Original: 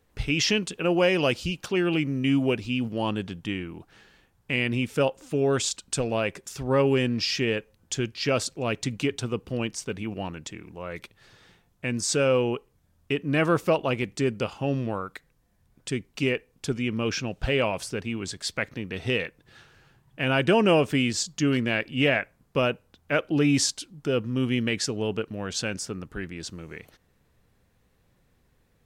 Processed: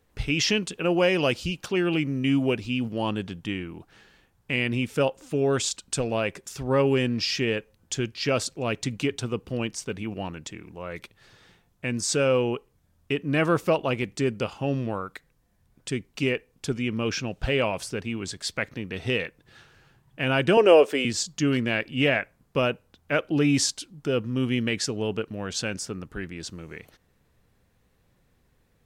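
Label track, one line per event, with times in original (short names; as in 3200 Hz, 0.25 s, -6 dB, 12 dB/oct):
20.570000	21.050000	resonant high-pass 450 Hz, resonance Q 2.4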